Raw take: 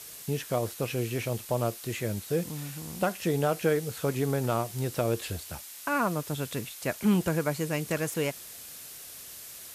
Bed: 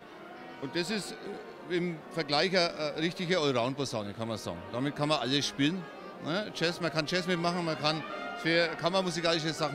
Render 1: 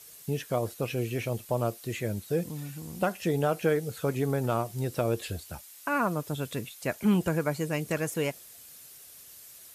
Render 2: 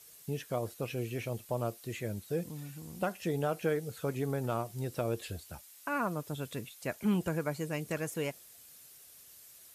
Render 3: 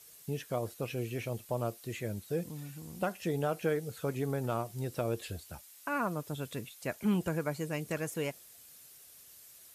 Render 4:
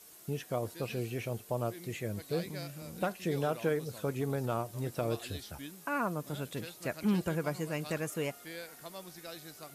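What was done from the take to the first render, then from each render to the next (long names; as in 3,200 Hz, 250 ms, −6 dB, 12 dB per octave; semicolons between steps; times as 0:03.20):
broadband denoise 8 dB, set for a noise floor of −45 dBFS
level −5.5 dB
no processing that can be heard
mix in bed −18 dB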